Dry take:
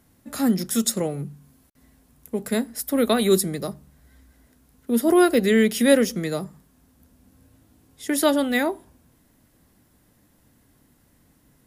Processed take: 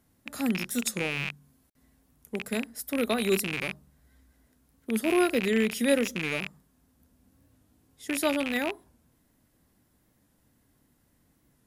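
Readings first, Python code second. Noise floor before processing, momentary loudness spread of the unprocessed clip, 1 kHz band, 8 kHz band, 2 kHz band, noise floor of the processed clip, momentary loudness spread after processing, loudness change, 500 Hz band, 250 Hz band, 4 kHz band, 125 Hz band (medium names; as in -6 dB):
-61 dBFS, 17 LU, -7.0 dB, -7.5 dB, -1.5 dB, -69 dBFS, 15 LU, -6.5 dB, -7.5 dB, -7.5 dB, -4.5 dB, -7.5 dB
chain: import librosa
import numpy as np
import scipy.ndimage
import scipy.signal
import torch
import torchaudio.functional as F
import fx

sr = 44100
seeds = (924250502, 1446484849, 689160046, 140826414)

y = fx.rattle_buzz(x, sr, strikes_db=-36.0, level_db=-12.0)
y = fx.record_warp(y, sr, rpm=45.0, depth_cents=100.0)
y = y * 10.0 ** (-7.5 / 20.0)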